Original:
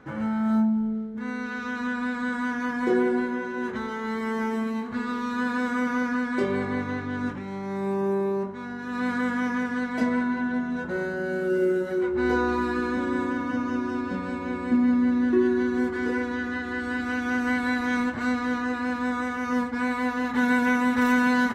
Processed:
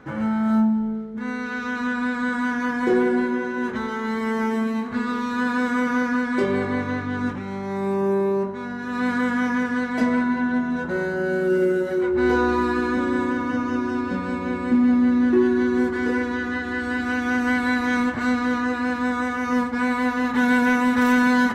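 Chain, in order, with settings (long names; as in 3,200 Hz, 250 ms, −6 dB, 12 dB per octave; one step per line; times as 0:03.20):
convolution reverb RT60 1.9 s, pre-delay 50 ms, DRR 14.5 dB
in parallel at −5 dB: hard clipping −18.5 dBFS, distortion −18 dB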